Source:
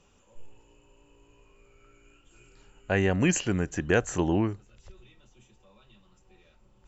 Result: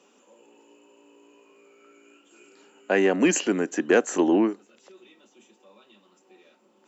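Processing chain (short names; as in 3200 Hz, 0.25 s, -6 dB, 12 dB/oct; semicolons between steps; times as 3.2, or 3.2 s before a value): steep high-pass 240 Hz 36 dB/oct; low shelf 430 Hz +6.5 dB; in parallel at -5.5 dB: soft clip -18 dBFS, distortion -14 dB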